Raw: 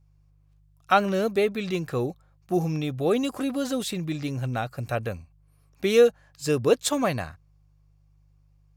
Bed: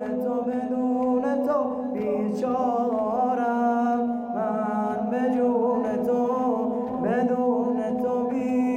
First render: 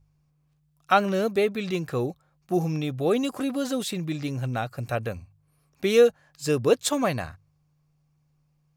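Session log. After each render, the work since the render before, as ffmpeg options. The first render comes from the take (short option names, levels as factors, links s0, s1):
-af "bandreject=f=50:t=h:w=4,bandreject=f=100:t=h:w=4"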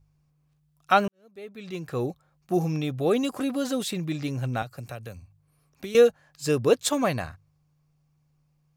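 -filter_complex "[0:a]asettb=1/sr,asplit=3[s0][s1][s2];[s0]atrim=end=4.624[s3];[s1]atrim=start=4.62:end=5.95,asetpts=PTS-STARTPTS,afade=t=in:d=0.004:c=qsin,afade=t=out:st=1.326:d=0.004:c=qsin,acrossover=split=140|3800[s4][s5][s6];[s4]acompressor=threshold=0.00794:ratio=4[s7];[s5]acompressor=threshold=0.0112:ratio=4[s8];[s6]acompressor=threshold=0.00355:ratio=4[s9];[s7][s8][s9]amix=inputs=3:normalize=0[s10];[s2]atrim=start=5.946[s11];[s3][s10]acrossfade=d=0.004:c1=hsin:c2=qsin[s12];[s12][s11]acrossfade=d=0.004:c1=qsin:c2=hsin,asplit=2[s13][s14];[s13]atrim=end=1.08,asetpts=PTS-STARTPTS,afade=t=out:st=1.076:d=0.004:c=hsin[s15];[s14]atrim=start=1.08,asetpts=PTS-STARTPTS,afade=t=in:d=1:c=qua[s16];[s15][s16]concat=n=2:v=0:a=1"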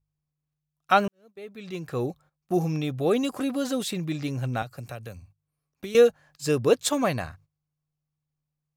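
-af "agate=range=0.158:threshold=0.00251:ratio=16:detection=peak"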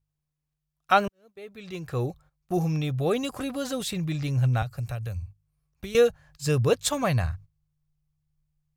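-af "asubboost=boost=11:cutoff=84"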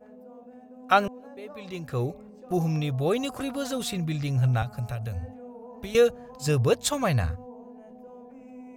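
-filter_complex "[1:a]volume=0.0841[s0];[0:a][s0]amix=inputs=2:normalize=0"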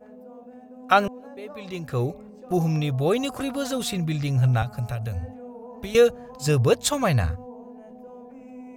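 -af "volume=1.41,alimiter=limit=0.708:level=0:latency=1"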